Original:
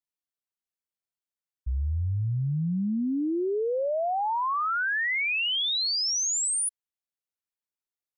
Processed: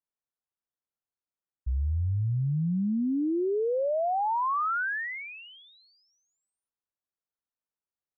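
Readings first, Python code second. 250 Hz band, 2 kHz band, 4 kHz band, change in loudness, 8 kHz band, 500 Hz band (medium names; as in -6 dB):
0.0 dB, -5.5 dB, under -25 dB, -2.0 dB, under -40 dB, 0.0 dB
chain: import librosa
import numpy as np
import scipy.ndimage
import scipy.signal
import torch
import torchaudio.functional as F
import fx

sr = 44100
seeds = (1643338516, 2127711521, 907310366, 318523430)

y = scipy.signal.sosfilt(scipy.signal.butter(4, 1600.0, 'lowpass', fs=sr, output='sos'), x)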